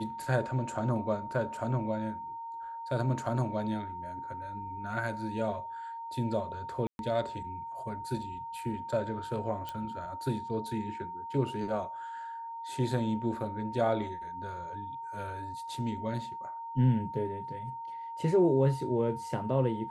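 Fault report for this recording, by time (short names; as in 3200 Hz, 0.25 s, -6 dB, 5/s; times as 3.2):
tone 920 Hz -38 dBFS
6.87–6.99 gap 0.121 s
9.69 pop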